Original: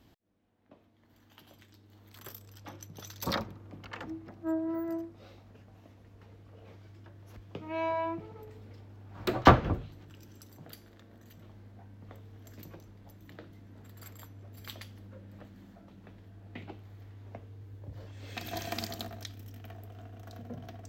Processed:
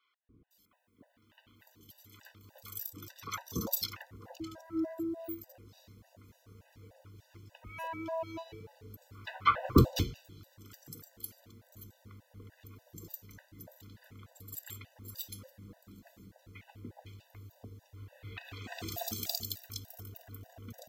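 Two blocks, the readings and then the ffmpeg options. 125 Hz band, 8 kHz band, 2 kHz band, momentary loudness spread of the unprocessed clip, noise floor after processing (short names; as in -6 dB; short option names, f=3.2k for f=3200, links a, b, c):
-1.0 dB, +5.5 dB, -5.5 dB, 19 LU, -69 dBFS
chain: -filter_complex "[0:a]crystalizer=i=2.5:c=0,acrossover=split=910|3000[a][b][c];[a]adelay=290[d];[c]adelay=510[e];[d][b][e]amix=inputs=3:normalize=0,afftfilt=real='re*gt(sin(2*PI*3.4*pts/sr)*(1-2*mod(floor(b*sr/1024/500),2)),0)':imag='im*gt(sin(2*PI*3.4*pts/sr)*(1-2*mod(floor(b*sr/1024/500),2)),0)':win_size=1024:overlap=0.75"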